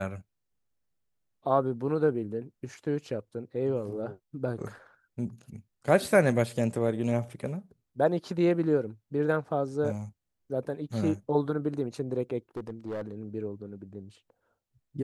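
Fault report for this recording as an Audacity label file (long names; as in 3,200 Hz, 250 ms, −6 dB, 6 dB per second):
12.570000	13.140000	clipping −31 dBFS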